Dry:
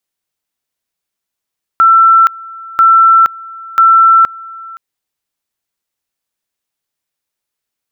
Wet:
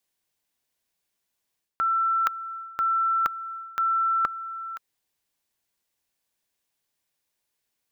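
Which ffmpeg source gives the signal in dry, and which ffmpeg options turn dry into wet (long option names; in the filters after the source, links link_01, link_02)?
-f lavfi -i "aevalsrc='pow(10,(-3-23*gte(mod(t,0.99),0.47))/20)*sin(2*PI*1340*t)':duration=2.97:sample_rate=44100"
-af "bandreject=frequency=1300:width=9.6,areverse,acompressor=threshold=-24dB:ratio=5,areverse"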